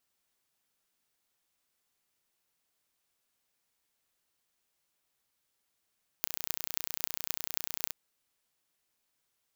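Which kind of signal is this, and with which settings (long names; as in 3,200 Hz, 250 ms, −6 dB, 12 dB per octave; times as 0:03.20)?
impulse train 30 per second, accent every 8, −2 dBFS 1.68 s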